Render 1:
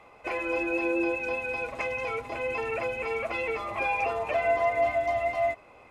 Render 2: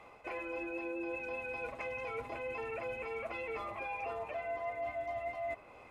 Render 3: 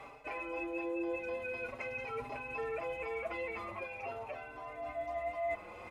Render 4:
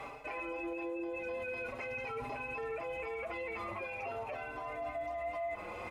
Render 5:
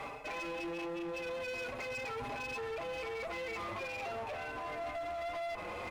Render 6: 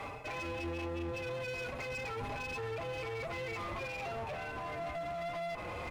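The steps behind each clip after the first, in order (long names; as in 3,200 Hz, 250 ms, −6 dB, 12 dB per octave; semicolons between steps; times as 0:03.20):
reversed playback; downward compressor 6 to 1, threshold −35 dBFS, peak gain reduction 13 dB; reversed playback; dynamic equaliser 6,200 Hz, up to −5 dB, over −58 dBFS, Q 0.71; level −2 dB
reversed playback; upward compression, threshold −41 dBFS; reversed playback; barber-pole flanger 4.7 ms +0.44 Hz; level +3.5 dB
brickwall limiter −38 dBFS, peak gain reduction 10.5 dB; level +5.5 dB
asymmetric clip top −44 dBFS, bottom −37 dBFS; level +3 dB
sub-octave generator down 2 octaves, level +2 dB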